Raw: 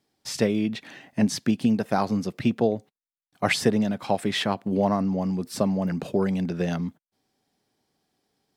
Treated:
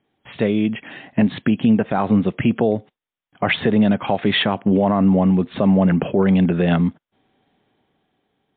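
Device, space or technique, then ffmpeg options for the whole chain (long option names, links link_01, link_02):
low-bitrate web radio: -af "dynaudnorm=framelen=180:gausssize=11:maxgain=7dB,alimiter=limit=-12.5dB:level=0:latency=1:release=76,volume=5.5dB" -ar 8000 -c:a libmp3lame -b:a 40k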